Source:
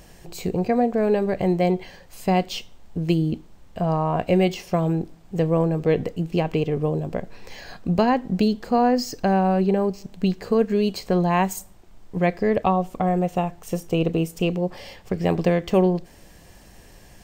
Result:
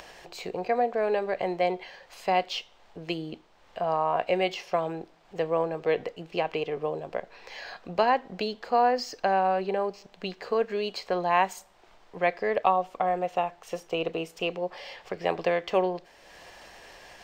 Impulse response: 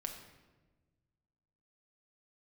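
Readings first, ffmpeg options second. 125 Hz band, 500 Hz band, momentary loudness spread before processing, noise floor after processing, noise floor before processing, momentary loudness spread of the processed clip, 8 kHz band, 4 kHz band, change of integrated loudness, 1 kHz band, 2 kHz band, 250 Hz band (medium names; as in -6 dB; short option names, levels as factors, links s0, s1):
-18.5 dB, -4.5 dB, 11 LU, -58 dBFS, -49 dBFS, 17 LU, -8.5 dB, -1.5 dB, -5.5 dB, -1.0 dB, 0.0 dB, -14.5 dB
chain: -filter_complex "[0:a]acompressor=mode=upward:threshold=0.0251:ratio=2.5,acrossover=split=460 5300:gain=0.1 1 0.158[s0][s1][s2];[s0][s1][s2]amix=inputs=3:normalize=0"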